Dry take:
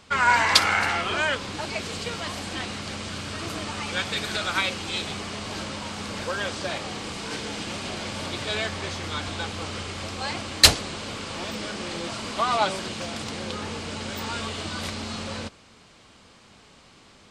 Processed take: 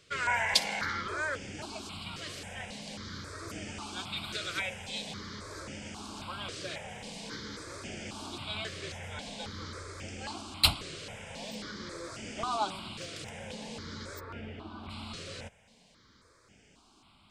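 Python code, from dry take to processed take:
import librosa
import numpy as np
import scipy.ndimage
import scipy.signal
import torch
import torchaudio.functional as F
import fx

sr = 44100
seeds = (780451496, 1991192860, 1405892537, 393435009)

y = fx.air_absorb(x, sr, metres=450.0, at=(14.19, 14.89), fade=0.02)
y = fx.phaser_held(y, sr, hz=3.7, low_hz=230.0, high_hz=4000.0)
y = F.gain(torch.from_numpy(y), -6.5).numpy()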